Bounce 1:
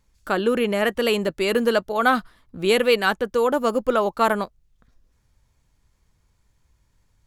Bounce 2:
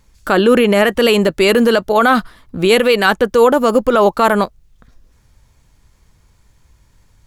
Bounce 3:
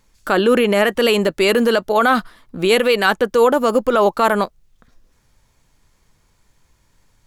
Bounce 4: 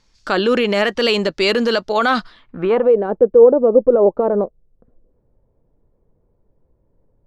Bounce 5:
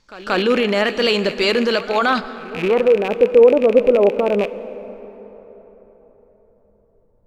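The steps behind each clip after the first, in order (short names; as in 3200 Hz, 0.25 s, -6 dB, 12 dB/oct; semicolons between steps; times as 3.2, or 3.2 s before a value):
maximiser +13 dB; gain -1 dB
bell 61 Hz -9 dB 2.3 oct; gain -2.5 dB
low-pass sweep 5100 Hz -> 500 Hz, 2.26–2.97; gain -2 dB
rattling part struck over -36 dBFS, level -15 dBFS; reverse echo 0.181 s -18 dB; plate-style reverb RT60 4.4 s, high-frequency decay 0.5×, DRR 13 dB; gain -1 dB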